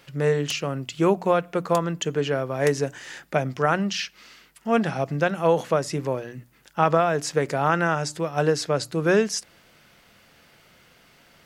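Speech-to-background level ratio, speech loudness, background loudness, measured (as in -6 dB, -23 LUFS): 18.5 dB, -24.0 LUFS, -42.5 LUFS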